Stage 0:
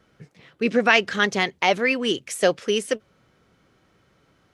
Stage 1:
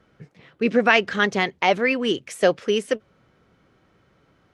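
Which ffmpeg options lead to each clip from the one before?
-af "highshelf=f=4.3k:g=-9.5,volume=1.5dB"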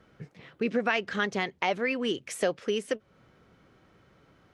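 -af "acompressor=threshold=-31dB:ratio=2"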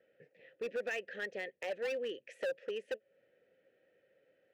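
-filter_complex "[0:a]asplit=3[a][b][c];[a]bandpass=f=530:t=q:w=8,volume=0dB[d];[b]bandpass=f=1.84k:t=q:w=8,volume=-6dB[e];[c]bandpass=f=2.48k:t=q:w=8,volume=-9dB[f];[d][e][f]amix=inputs=3:normalize=0,asoftclip=type=hard:threshold=-33.5dB,volume=1dB"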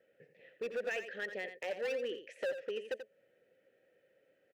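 -af "aecho=1:1:86:0.316"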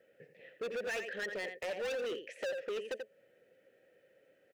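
-af "asoftclip=type=hard:threshold=-38.5dB,volume=4dB"

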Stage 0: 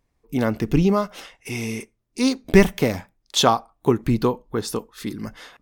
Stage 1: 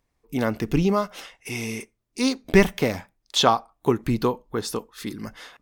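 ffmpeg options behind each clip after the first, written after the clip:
-filter_complex "[0:a]lowshelf=f=460:g=-4,acrossover=split=5700[a][b];[b]alimiter=level_in=0.5dB:limit=-24dB:level=0:latency=1:release=385,volume=-0.5dB[c];[a][c]amix=inputs=2:normalize=0"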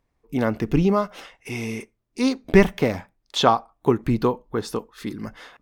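-af "highshelf=f=3.3k:g=-9,volume=2dB"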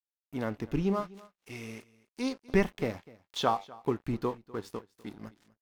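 -af "flanger=delay=8.5:depth=2.7:regen=84:speed=0.36:shape=triangular,aeval=exprs='sgn(val(0))*max(abs(val(0))-0.0075,0)':c=same,aecho=1:1:249:0.0841,volume=-5.5dB"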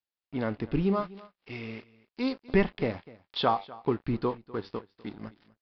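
-filter_complex "[0:a]asplit=2[a][b];[b]asoftclip=type=tanh:threshold=-26dB,volume=-6dB[c];[a][c]amix=inputs=2:normalize=0,aresample=11025,aresample=44100"

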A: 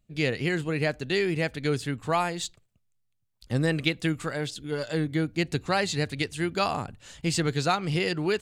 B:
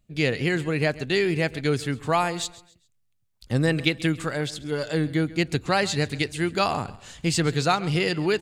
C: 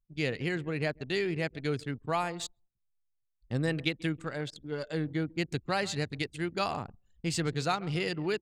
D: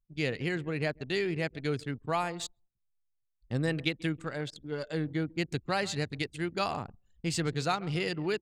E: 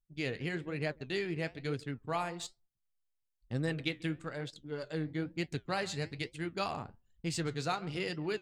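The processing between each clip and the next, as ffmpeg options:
-af "aecho=1:1:135|270|405:0.112|0.0393|0.0137,volume=3dB"
-af "anlmdn=15.8,volume=-8dB"
-af anull
-af "flanger=delay=5.9:depth=7.5:regen=-69:speed=1.1:shape=triangular"

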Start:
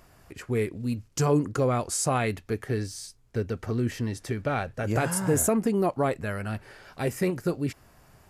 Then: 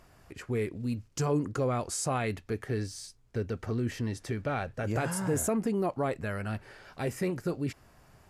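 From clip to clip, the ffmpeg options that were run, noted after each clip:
-filter_complex "[0:a]highshelf=f=12k:g=-8.5,asplit=2[a][b];[b]alimiter=limit=-23.5dB:level=0:latency=1:release=17,volume=-0.5dB[c];[a][c]amix=inputs=2:normalize=0,volume=-8dB"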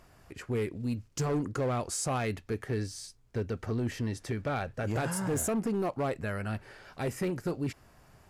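-af "asoftclip=type=hard:threshold=-25.5dB"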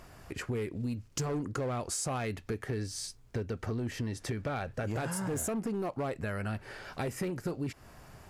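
-af "acompressor=threshold=-39dB:ratio=4,volume=6dB"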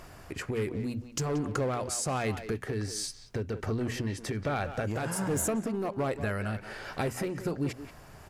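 -filter_complex "[0:a]bandreject=f=60:t=h:w=6,bandreject=f=120:t=h:w=6,bandreject=f=180:t=h:w=6,bandreject=f=240:t=h:w=6,tremolo=f=1.3:d=0.28,asplit=2[a][b];[b]adelay=180,highpass=300,lowpass=3.4k,asoftclip=type=hard:threshold=-32.5dB,volume=-9dB[c];[a][c]amix=inputs=2:normalize=0,volume=4.5dB"

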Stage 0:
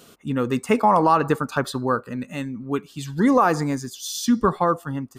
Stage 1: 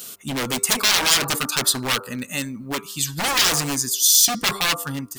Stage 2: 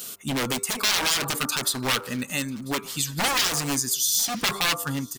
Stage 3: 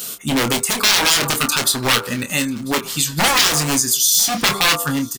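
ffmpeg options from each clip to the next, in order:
-af "bandreject=f=98.82:t=h:w=4,bandreject=f=197.64:t=h:w=4,bandreject=f=296.46:t=h:w=4,bandreject=f=395.28:t=h:w=4,bandreject=f=494.1:t=h:w=4,bandreject=f=592.92:t=h:w=4,bandreject=f=691.74:t=h:w=4,bandreject=f=790.56:t=h:w=4,bandreject=f=889.38:t=h:w=4,bandreject=f=988.2:t=h:w=4,bandreject=f=1.08702k:t=h:w=4,bandreject=f=1.18584k:t=h:w=4,bandreject=f=1.28466k:t=h:w=4,bandreject=f=1.38348k:t=h:w=4,aeval=exprs='0.0891*(abs(mod(val(0)/0.0891+3,4)-2)-1)':c=same,crystalizer=i=7.5:c=0,volume=-1dB"
-af "alimiter=limit=-12.5dB:level=0:latency=1:release=176,aecho=1:1:994|1988:0.0708|0.0163"
-filter_complex "[0:a]asplit=2[a][b];[b]adelay=26,volume=-7.5dB[c];[a][c]amix=inputs=2:normalize=0,volume=7.5dB"

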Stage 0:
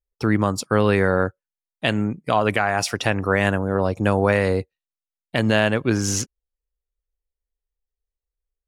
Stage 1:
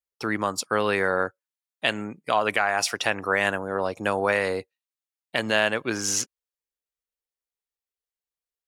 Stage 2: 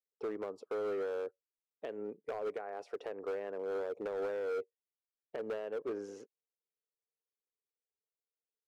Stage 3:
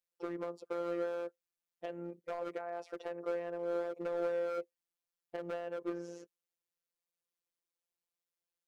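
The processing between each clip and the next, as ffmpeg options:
-af "highpass=f=720:p=1"
-af "acompressor=threshold=-26dB:ratio=4,bandpass=f=440:t=q:w=5.2:csg=0,asoftclip=type=hard:threshold=-36.5dB,volume=3.5dB"
-af "afftfilt=real='hypot(re,im)*cos(PI*b)':imag='0':win_size=1024:overlap=0.75,volume=4.5dB"

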